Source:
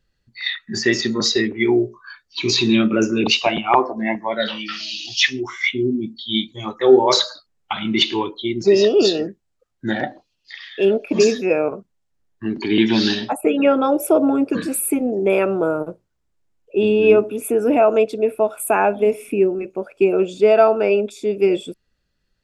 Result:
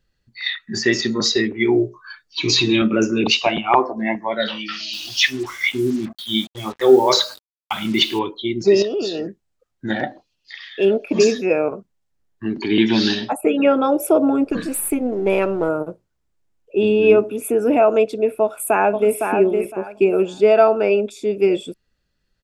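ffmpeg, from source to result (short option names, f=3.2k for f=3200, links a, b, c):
-filter_complex "[0:a]asettb=1/sr,asplit=3[a][b][c];[a]atrim=end=1.744[d];[b]atrim=start=1.74:end=2.82,asetpts=PTS-STARTPTS,afade=t=in:d=0.004:c=qsin,afade=t=out:st=1.076:d=0.004:c=qsin,aecho=1:1:6.5:0.65,atrim=end_sample=47628[e];[c]atrim=start=2.816[f];[d][e]acrossfade=d=0.004:c1=hsin:c2=qsin[g];[g][f]acrossfade=d=0.004:c1=qsin:c2=hsin,asettb=1/sr,asplit=3[h][i][j];[h]atrim=end=4.934[k];[i]atrim=start=4.93:end=8.19,asetpts=PTS-STARTPTS,afade=t=in:d=0.004:c=qsin,afade=t=out:st=3.256:d=0.004:c=qsin,acrusher=bits=5:mix=0:aa=0.5[l];[j]atrim=start=8.186[m];[k][l]acrossfade=d=0.004:c1=hsin:c2=qsin[n];[n][m]acrossfade=d=0.004:c1=qsin:c2=hsin,asettb=1/sr,asplit=3[o][p][q];[o]atrim=end=8.824[r];[p]atrim=start=8.82:end=9.9,asetpts=PTS-STARTPTS,afade=t=in:d=0.004:c=qsin,afade=t=out:st=1.076:d=0.004:c=qsin,acompressor=threshold=-21dB:ratio=4:attack=3.2:release=140:knee=1:detection=peak[s];[q]atrim=start=9.896[t];[r][s]acrossfade=d=0.004:c1=hsin:c2=qsin[u];[u][t]acrossfade=d=0.004:c1=qsin:c2=hsin,asettb=1/sr,asplit=3[v][w][x];[v]atrim=end=14.444[y];[w]atrim=start=14.44:end=15.69,asetpts=PTS-STARTPTS,afade=t=in:d=0.004:c=qsin,afade=t=out:st=1.246:d=0.004:c=qsin,aeval=exprs='if(lt(val(0),0),0.708*val(0),val(0))':c=same[z];[x]atrim=start=15.686[aa];[y][z]acrossfade=d=0.004:c1=hsin:c2=qsin[ab];[ab][aa]acrossfade=d=0.004:c1=qsin:c2=hsin,asplit=2[ac][ad];[ad]afade=t=in:st=18.42:d=0.01,afade=t=out:st=19.2:d=0.01,aecho=0:1:510|1020|1530:0.562341|0.112468|0.0224937[ae];[ac][ae]amix=inputs=2:normalize=0"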